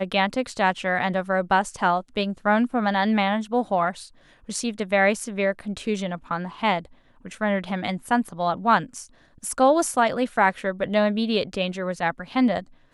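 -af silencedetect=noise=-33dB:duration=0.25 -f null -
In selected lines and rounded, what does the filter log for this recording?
silence_start: 4.04
silence_end: 4.49 | silence_duration: 0.45
silence_start: 6.85
silence_end: 7.25 | silence_duration: 0.40
silence_start: 9.04
silence_end: 9.44 | silence_duration: 0.40
silence_start: 12.62
silence_end: 12.94 | silence_duration: 0.32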